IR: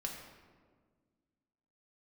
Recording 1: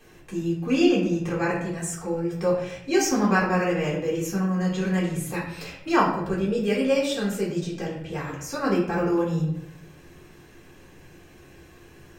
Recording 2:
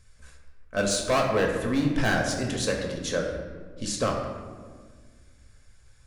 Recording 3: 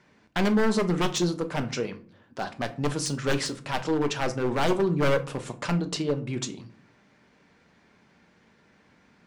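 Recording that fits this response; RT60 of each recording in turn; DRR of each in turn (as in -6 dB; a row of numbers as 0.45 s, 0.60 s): 2; 0.75 s, 1.6 s, 0.45 s; -4.5 dB, -0.5 dB, 7.0 dB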